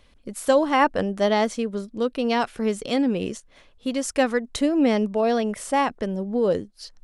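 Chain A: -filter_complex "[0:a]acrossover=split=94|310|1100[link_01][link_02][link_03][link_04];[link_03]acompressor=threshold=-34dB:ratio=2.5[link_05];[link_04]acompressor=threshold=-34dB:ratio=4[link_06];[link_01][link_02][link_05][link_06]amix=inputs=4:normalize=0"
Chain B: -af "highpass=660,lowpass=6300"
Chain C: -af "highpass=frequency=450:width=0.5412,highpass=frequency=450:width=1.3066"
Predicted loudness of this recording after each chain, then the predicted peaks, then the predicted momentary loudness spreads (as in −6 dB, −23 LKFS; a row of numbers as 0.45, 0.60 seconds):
−27.5, −28.0, −26.0 LKFS; −13.0, −7.0, −7.0 dBFS; 8, 15, 14 LU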